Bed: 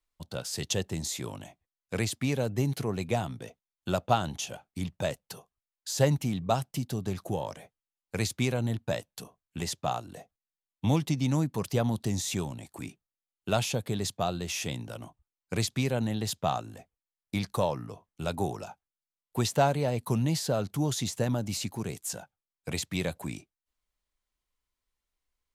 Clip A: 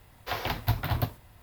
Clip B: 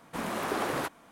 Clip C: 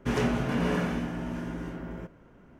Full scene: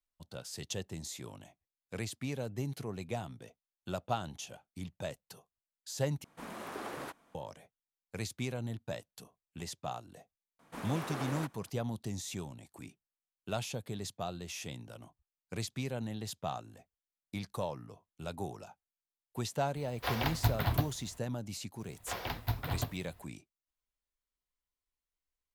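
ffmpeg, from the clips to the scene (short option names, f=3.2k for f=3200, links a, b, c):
-filter_complex "[2:a]asplit=2[a][b];[1:a]asplit=2[c][d];[0:a]volume=-9dB,asplit=2[e][f];[e]atrim=end=6.244[g];[a]atrim=end=1.11,asetpts=PTS-STARTPTS,volume=-11dB[h];[f]atrim=start=7.346[i];[b]atrim=end=1.11,asetpts=PTS-STARTPTS,volume=-9dB,afade=t=in:d=0.004:c=hsin,afade=t=out:st=1.106:d=0.004:c=hsin,adelay=10590[j];[c]atrim=end=1.42,asetpts=PTS-STARTPTS,volume=-2.5dB,afade=t=in:d=0.004:c=hsin,afade=t=out:st=1.416:d=0.004:c=hsin,adelay=19760[k];[d]atrim=end=1.42,asetpts=PTS-STARTPTS,volume=-7dB,afade=t=in:d=0.004:c=hsin,afade=t=out:st=1.416:d=0.004:c=hsin,adelay=961380S[l];[g][h]acrossfade=d=0.004:c1=hsin:c2=hsin[m];[m][i]acrossfade=d=0.004:c1=hsin:c2=hsin[n];[n][j][k][l]amix=inputs=4:normalize=0"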